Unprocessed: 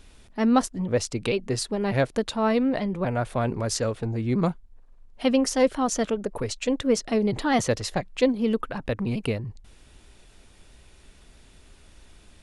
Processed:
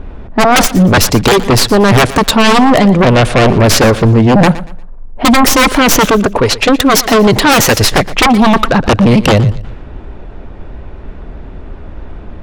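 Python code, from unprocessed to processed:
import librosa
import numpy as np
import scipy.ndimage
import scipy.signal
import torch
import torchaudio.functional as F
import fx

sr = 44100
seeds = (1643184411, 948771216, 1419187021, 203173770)

p1 = fx.tracing_dist(x, sr, depth_ms=0.22)
p2 = fx.env_lowpass(p1, sr, base_hz=900.0, full_db=-22.0)
p3 = fx.low_shelf(p2, sr, hz=430.0, db=-7.0, at=(6.26, 7.79))
p4 = fx.rider(p3, sr, range_db=5, speed_s=2.0)
p5 = p3 + (p4 * librosa.db_to_amplitude(-0.5))
p6 = fx.fold_sine(p5, sr, drive_db=16, ceiling_db=-2.0)
p7 = p6 + fx.echo_feedback(p6, sr, ms=118, feedback_pct=29, wet_db=-16.5, dry=0)
y = p7 * librosa.db_to_amplitude(-1.5)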